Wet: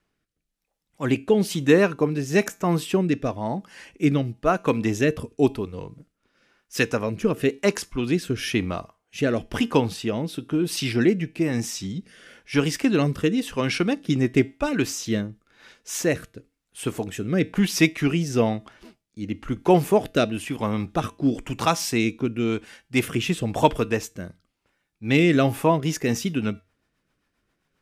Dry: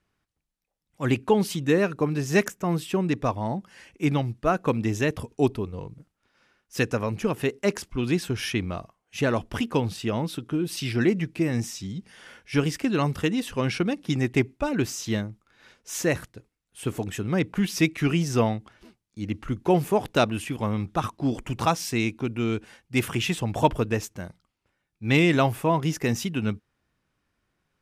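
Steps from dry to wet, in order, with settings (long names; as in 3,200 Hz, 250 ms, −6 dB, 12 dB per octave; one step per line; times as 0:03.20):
parametric band 85 Hz −7.5 dB 1.2 octaves
tuned comb filter 92 Hz, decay 0.31 s, harmonics odd, mix 40%
rotating-speaker cabinet horn 1 Hz, later 7.5 Hz, at 0:25.44
level +9 dB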